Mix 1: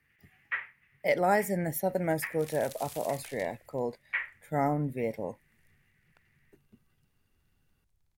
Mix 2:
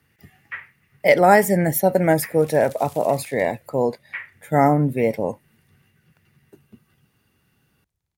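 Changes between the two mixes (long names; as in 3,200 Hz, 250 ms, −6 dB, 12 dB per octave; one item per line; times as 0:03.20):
speech +12.0 dB
master: add high-pass filter 65 Hz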